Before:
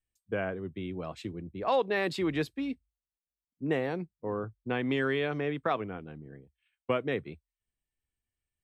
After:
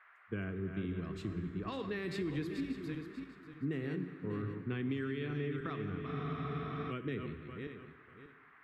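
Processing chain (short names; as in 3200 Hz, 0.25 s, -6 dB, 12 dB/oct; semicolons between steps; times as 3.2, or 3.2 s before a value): regenerating reverse delay 0.295 s, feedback 49%, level -8 dB; gate -53 dBFS, range -12 dB; band noise 640–2000 Hz -54 dBFS; band shelf 690 Hz -13 dB 1.1 oct; plate-style reverb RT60 1.8 s, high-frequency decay 0.85×, DRR 10.5 dB; compressor, threshold -31 dBFS, peak gain reduction 7.5 dB; low shelf 260 Hz +11 dB; spectral freeze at 6.08, 0.82 s; gain -7 dB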